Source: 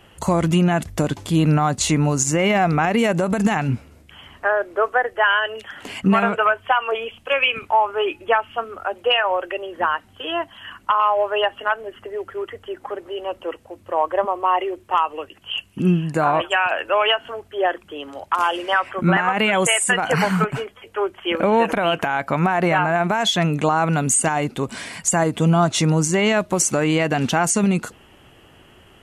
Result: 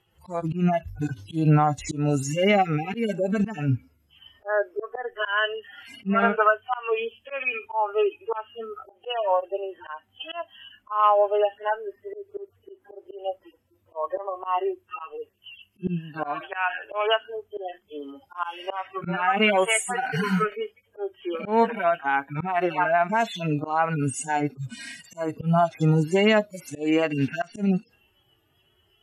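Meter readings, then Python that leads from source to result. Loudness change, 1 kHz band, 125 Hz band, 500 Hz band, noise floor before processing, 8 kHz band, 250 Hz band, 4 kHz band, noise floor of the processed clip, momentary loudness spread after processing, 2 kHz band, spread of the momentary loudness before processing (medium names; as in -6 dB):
-5.0 dB, -5.5 dB, -5.5 dB, -4.0 dB, -51 dBFS, -14.0 dB, -5.5 dB, -9.5 dB, -67 dBFS, 17 LU, -6.5 dB, 12 LU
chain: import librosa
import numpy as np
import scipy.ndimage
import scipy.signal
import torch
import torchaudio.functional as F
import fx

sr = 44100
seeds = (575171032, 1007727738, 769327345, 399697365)

y = fx.hpss_only(x, sr, part='harmonic')
y = fx.noise_reduce_blind(y, sr, reduce_db=15)
y = fx.auto_swell(y, sr, attack_ms=174.0)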